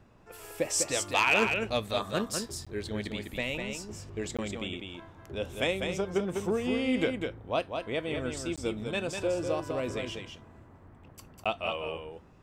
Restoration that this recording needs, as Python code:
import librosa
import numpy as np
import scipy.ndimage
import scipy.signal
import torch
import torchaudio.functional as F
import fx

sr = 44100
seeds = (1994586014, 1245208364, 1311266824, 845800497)

y = fx.fix_interpolate(x, sr, at_s=(2.65, 4.37, 8.56, 11.44), length_ms=16.0)
y = fx.fix_echo_inverse(y, sr, delay_ms=200, level_db=-5.5)